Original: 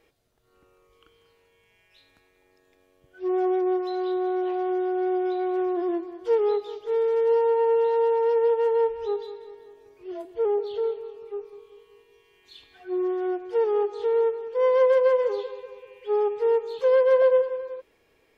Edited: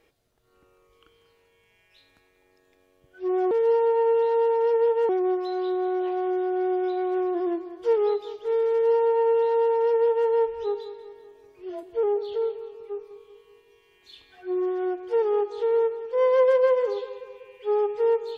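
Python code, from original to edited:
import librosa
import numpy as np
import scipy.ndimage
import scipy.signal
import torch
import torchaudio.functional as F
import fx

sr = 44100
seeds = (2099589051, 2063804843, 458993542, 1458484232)

y = fx.edit(x, sr, fx.duplicate(start_s=7.13, length_s=1.58, to_s=3.51), tone=tone)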